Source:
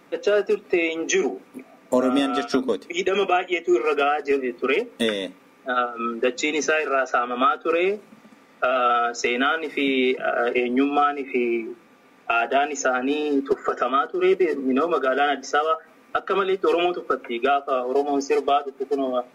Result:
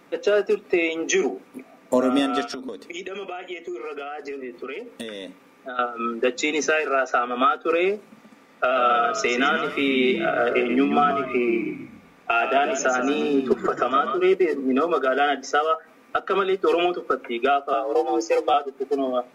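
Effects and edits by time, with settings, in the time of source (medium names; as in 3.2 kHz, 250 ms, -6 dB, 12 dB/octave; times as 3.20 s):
2.51–5.79 s: compression 10:1, threshold -29 dBFS
8.64–14.19 s: frequency-shifting echo 134 ms, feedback 33%, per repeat -45 Hz, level -7.5 dB
17.73–18.54 s: frequency shift +55 Hz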